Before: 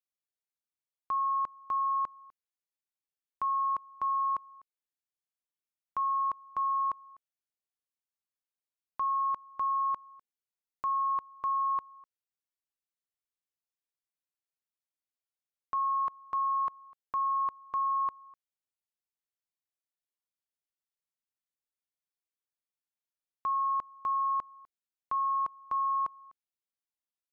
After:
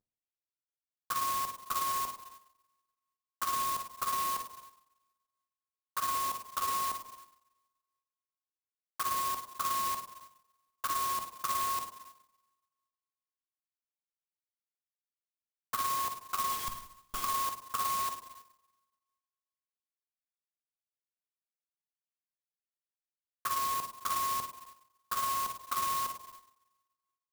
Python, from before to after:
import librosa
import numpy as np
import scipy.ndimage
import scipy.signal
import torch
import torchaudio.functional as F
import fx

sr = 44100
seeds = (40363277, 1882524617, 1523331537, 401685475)

y = fx.cvsd(x, sr, bps=64000)
y = scipy.signal.sosfilt(scipy.signal.butter(2, 1600.0, 'lowpass', fs=sr, output='sos'), y)
y = fx.schmitt(y, sr, flips_db=-43.0, at=(16.52, 17.24))
y = fx.env_flanger(y, sr, rest_ms=9.8, full_db=-28.5)
y = fx.rev_double_slope(y, sr, seeds[0], early_s=0.75, late_s=1.9, knee_db=-27, drr_db=1.5)
y = fx.clock_jitter(y, sr, seeds[1], jitter_ms=0.077)
y = F.gain(torch.from_numpy(y), 2.0).numpy()